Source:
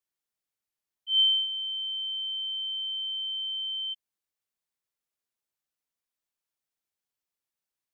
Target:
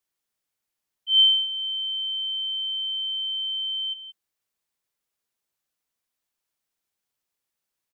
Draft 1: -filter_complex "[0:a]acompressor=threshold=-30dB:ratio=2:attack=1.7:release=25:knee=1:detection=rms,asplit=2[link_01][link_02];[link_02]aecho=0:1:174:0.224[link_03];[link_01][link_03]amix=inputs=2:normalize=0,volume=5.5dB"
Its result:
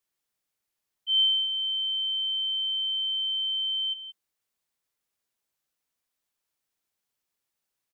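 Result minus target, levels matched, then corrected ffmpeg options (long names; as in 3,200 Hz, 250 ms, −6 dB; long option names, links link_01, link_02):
downward compressor: peak gain reduction +6 dB
-filter_complex "[0:a]asplit=2[link_01][link_02];[link_02]aecho=0:1:174:0.224[link_03];[link_01][link_03]amix=inputs=2:normalize=0,volume=5.5dB"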